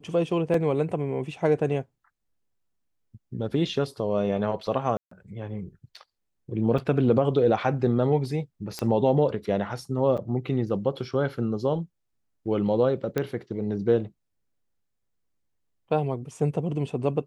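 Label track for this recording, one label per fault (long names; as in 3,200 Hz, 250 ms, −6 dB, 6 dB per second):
0.540000	0.540000	drop-out 2.5 ms
4.970000	5.110000	drop-out 144 ms
6.780000	6.780000	drop-out 4.6 ms
8.790000	8.790000	click −15 dBFS
10.170000	10.180000	drop-out 6.7 ms
13.180000	13.180000	click −13 dBFS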